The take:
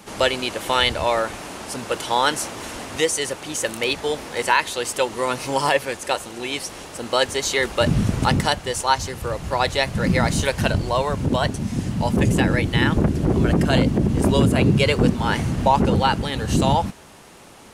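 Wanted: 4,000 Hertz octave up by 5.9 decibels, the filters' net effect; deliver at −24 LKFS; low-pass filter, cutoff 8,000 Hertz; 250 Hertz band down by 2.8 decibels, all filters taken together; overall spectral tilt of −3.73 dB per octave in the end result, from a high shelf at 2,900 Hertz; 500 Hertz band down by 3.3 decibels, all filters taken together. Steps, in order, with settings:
low-pass filter 8,000 Hz
parametric band 250 Hz −3 dB
parametric band 500 Hz −3.5 dB
high-shelf EQ 2,900 Hz +3 dB
parametric band 4,000 Hz +5.5 dB
level −3.5 dB

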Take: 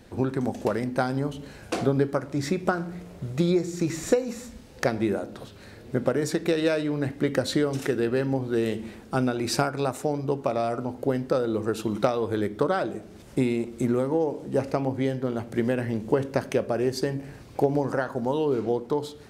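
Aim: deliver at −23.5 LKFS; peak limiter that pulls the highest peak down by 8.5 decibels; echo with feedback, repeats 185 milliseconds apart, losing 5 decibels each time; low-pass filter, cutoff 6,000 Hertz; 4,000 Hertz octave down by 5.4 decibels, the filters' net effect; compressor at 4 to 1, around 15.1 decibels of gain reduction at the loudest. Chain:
low-pass filter 6,000 Hz
parametric band 4,000 Hz −5.5 dB
downward compressor 4 to 1, threshold −35 dBFS
brickwall limiter −27 dBFS
repeating echo 185 ms, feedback 56%, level −5 dB
level +14.5 dB

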